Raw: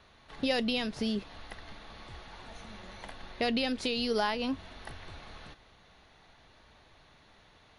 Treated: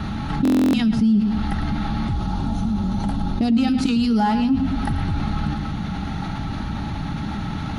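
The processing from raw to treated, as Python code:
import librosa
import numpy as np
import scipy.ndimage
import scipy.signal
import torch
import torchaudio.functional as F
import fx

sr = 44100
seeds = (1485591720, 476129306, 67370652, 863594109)

y = fx.peak_eq(x, sr, hz=2000.0, db=-10.5, octaves=1.1, at=(2.13, 3.56))
y = fx.echo_feedback(y, sr, ms=108, feedback_pct=33, wet_db=-12.5)
y = 10.0 ** (-22.0 / 20.0) * np.tanh(y / 10.0 ** (-22.0 / 20.0))
y = fx.low_shelf_res(y, sr, hz=280.0, db=13.0, q=1.5)
y = fx.notch_comb(y, sr, f0_hz=250.0)
y = fx.small_body(y, sr, hz=(260.0, 810.0, 1300.0), ring_ms=40, db=15)
y = fx.buffer_glitch(y, sr, at_s=(0.43,), block=1024, repeats=12)
y = fx.env_flatten(y, sr, amount_pct=70)
y = y * librosa.db_to_amplitude(-4.5)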